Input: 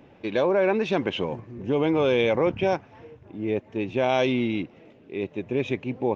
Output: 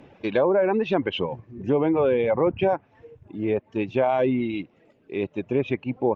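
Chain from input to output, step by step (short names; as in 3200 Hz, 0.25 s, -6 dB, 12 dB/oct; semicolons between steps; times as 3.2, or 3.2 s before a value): reverb removal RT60 1.2 s; treble ducked by the level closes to 1400 Hz, closed at -20 dBFS; gain +3 dB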